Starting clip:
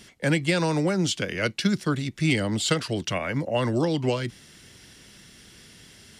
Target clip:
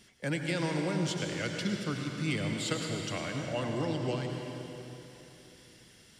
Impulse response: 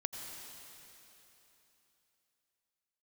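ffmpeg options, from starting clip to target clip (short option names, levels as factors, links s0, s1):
-filter_complex "[1:a]atrim=start_sample=2205[s0];[0:a][s0]afir=irnorm=-1:irlink=0,volume=0.376"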